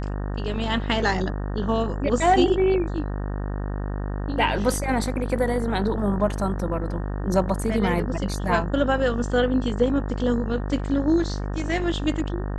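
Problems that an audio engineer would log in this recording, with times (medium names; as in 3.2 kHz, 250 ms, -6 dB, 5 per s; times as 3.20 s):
buzz 50 Hz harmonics 37 -28 dBFS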